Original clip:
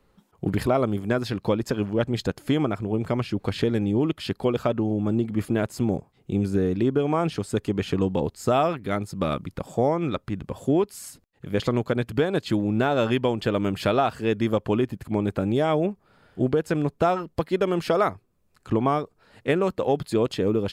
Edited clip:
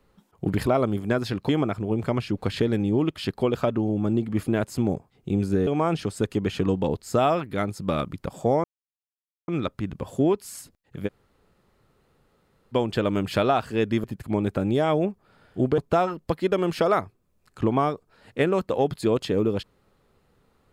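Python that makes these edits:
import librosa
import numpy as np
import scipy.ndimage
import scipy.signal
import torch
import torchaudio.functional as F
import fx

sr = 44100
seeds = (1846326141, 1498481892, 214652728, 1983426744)

y = fx.edit(x, sr, fx.cut(start_s=1.49, length_s=1.02),
    fx.cut(start_s=6.69, length_s=0.31),
    fx.insert_silence(at_s=9.97, length_s=0.84),
    fx.room_tone_fill(start_s=11.56, length_s=1.66, crossfade_s=0.04),
    fx.cut(start_s=14.53, length_s=0.32),
    fx.cut(start_s=16.59, length_s=0.28), tone=tone)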